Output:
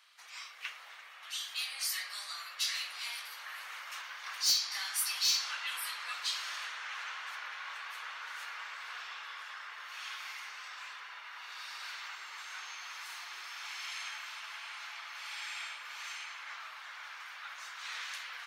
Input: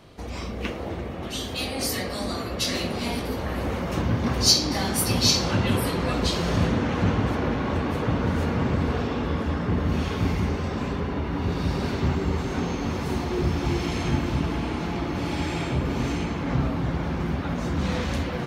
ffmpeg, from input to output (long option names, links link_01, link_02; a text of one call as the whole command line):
ffmpeg -i in.wav -af "highpass=frequency=1300:width=0.5412,highpass=frequency=1300:width=1.3066,asoftclip=type=tanh:threshold=-17.5dB,volume=-5dB" out.wav